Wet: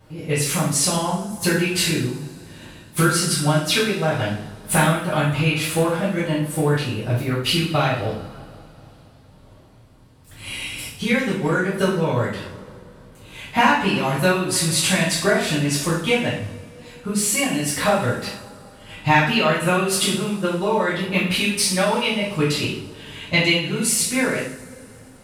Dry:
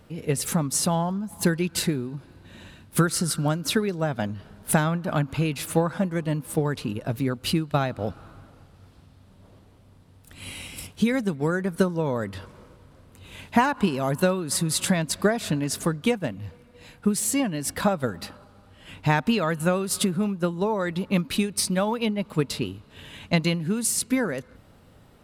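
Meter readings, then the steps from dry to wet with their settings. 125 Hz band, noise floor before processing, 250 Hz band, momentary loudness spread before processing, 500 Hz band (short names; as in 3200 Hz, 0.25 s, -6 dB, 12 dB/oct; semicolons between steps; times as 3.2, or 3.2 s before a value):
+4.0 dB, -54 dBFS, +2.5 dB, 11 LU, +4.5 dB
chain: two-slope reverb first 0.57 s, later 3.4 s, from -22 dB, DRR -10 dB; dynamic EQ 2600 Hz, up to +8 dB, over -37 dBFS, Q 1.3; gain -5.5 dB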